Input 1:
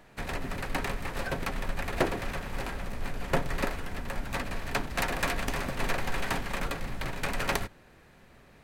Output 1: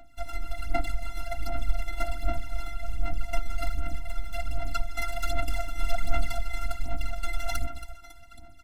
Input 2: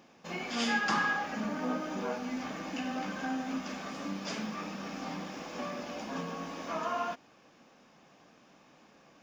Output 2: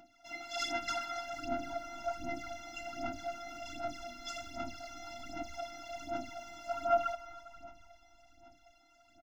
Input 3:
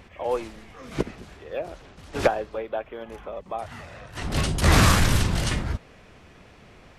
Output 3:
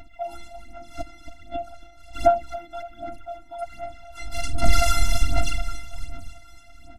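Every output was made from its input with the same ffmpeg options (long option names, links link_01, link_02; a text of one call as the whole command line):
ffmpeg -i in.wav -filter_complex "[0:a]asplit=8[link_01][link_02][link_03][link_04][link_05][link_06][link_07][link_08];[link_02]adelay=275,afreqshift=-46,volume=-12dB[link_09];[link_03]adelay=550,afreqshift=-92,volume=-16.6dB[link_10];[link_04]adelay=825,afreqshift=-138,volume=-21.2dB[link_11];[link_05]adelay=1100,afreqshift=-184,volume=-25.7dB[link_12];[link_06]adelay=1375,afreqshift=-230,volume=-30.3dB[link_13];[link_07]adelay=1650,afreqshift=-276,volume=-34.9dB[link_14];[link_08]adelay=1925,afreqshift=-322,volume=-39.5dB[link_15];[link_01][link_09][link_10][link_11][link_12][link_13][link_14][link_15]amix=inputs=8:normalize=0,aphaser=in_gain=1:out_gain=1:delay=2.4:decay=0.76:speed=1.3:type=sinusoidal,afftfilt=real='hypot(re,im)*cos(PI*b)':imag='0':win_size=512:overlap=0.75,afftfilt=real='re*eq(mod(floor(b*sr/1024/320),2),0)':imag='im*eq(mod(floor(b*sr/1024/320),2),0)':win_size=1024:overlap=0.75" out.wav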